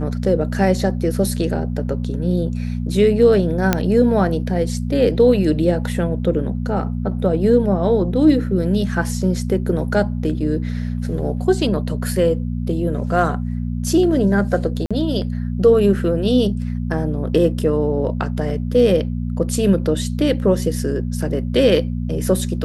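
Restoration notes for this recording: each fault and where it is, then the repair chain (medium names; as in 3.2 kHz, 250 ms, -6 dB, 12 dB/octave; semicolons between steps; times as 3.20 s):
hum 60 Hz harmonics 4 -23 dBFS
3.73 s: pop -1 dBFS
14.86–14.91 s: dropout 46 ms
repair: de-click; de-hum 60 Hz, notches 4; interpolate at 14.86 s, 46 ms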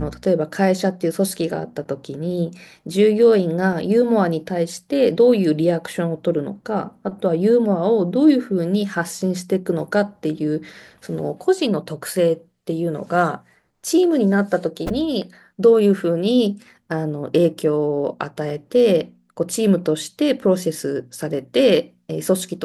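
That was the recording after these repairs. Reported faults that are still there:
nothing left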